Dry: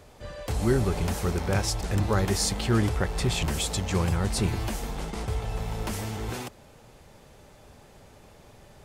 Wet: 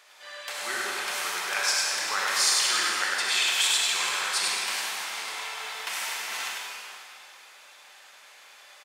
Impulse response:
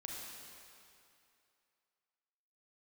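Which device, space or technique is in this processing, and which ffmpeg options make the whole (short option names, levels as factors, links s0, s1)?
PA in a hall: -filter_complex "[0:a]highpass=110,highpass=1300,equalizer=f=2300:t=o:w=3:g=6.5,aecho=1:1:99:0.562[s0];[1:a]atrim=start_sample=2205[s1];[s0][s1]afir=irnorm=-1:irlink=0,volume=1.78"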